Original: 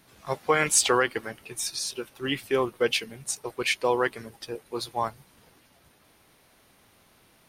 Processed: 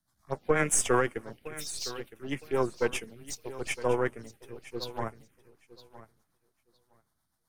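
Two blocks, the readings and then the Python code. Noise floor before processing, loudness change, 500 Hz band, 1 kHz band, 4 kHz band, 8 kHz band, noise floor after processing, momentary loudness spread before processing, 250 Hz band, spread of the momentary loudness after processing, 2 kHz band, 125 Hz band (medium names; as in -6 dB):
-61 dBFS, -4.5 dB, -3.0 dB, -5.5 dB, -10.5 dB, -5.0 dB, -78 dBFS, 15 LU, -1.5 dB, 17 LU, -5.5 dB, +1.5 dB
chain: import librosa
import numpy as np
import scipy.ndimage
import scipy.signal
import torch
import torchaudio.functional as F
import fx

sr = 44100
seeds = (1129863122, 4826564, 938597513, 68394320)

y = np.where(x < 0.0, 10.0 ** (-7.0 / 20.0) * x, x)
y = fx.env_phaser(y, sr, low_hz=420.0, high_hz=4200.0, full_db=-26.0)
y = fx.rotary(y, sr, hz=8.0)
y = fx.echo_feedback(y, sr, ms=963, feedback_pct=26, wet_db=-12)
y = fx.band_widen(y, sr, depth_pct=40)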